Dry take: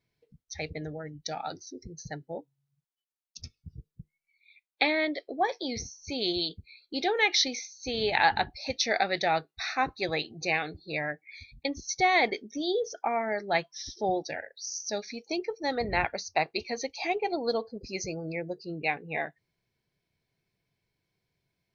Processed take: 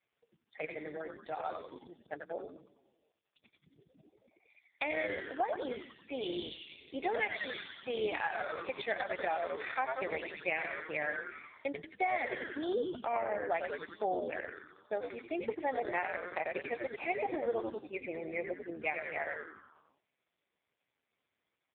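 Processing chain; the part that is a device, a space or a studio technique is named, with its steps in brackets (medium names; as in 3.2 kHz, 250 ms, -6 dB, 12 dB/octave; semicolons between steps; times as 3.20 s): 10.69–12.30 s: high-pass 110 Hz 24 dB/octave; frequency-shifting echo 91 ms, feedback 58%, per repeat -120 Hz, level -4.5 dB; voicemail (band-pass 400–3000 Hz; compression 8:1, threshold -28 dBFS, peak gain reduction 11 dB; AMR-NB 4.75 kbps 8 kHz)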